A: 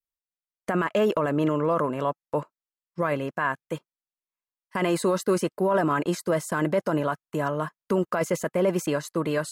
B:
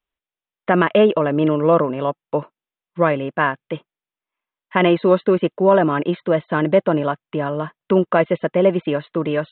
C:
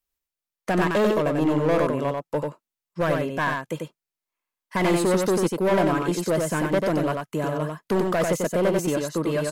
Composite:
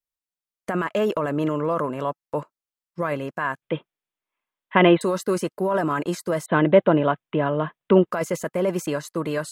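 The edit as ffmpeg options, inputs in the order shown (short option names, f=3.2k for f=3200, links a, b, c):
-filter_complex "[1:a]asplit=2[a][b];[0:a]asplit=3[c][d][e];[c]atrim=end=3.622[f];[a]atrim=start=3.618:end=5.012[g];[d]atrim=start=5.008:end=6.462[h];[b]atrim=start=6.458:end=8.112[i];[e]atrim=start=8.108[j];[f][g]acrossfade=d=0.004:c1=hsin:c2=hsin[k];[k][h]acrossfade=d=0.004:c1=hsin:c2=hsin[l];[l][i]acrossfade=d=0.004:c1=hsin:c2=hsin[m];[m][j]acrossfade=d=0.004:c1=hsin:c2=hsin"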